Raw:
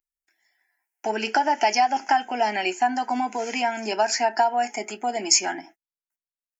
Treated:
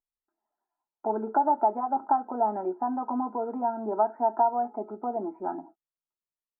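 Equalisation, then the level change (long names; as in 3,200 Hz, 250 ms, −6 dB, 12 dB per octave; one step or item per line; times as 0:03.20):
Chebyshev low-pass filter 1,300 Hz, order 6
notch filter 750 Hz, Q 13
−1.0 dB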